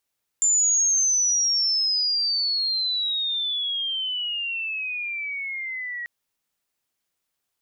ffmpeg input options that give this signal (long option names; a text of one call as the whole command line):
ffmpeg -f lavfi -i "aevalsrc='pow(10,(-16.5-12.5*t/5.64)/20)*sin(2*PI*7200*5.64/log(1900/7200)*(exp(log(1900/7200)*t/5.64)-1))':duration=5.64:sample_rate=44100" out.wav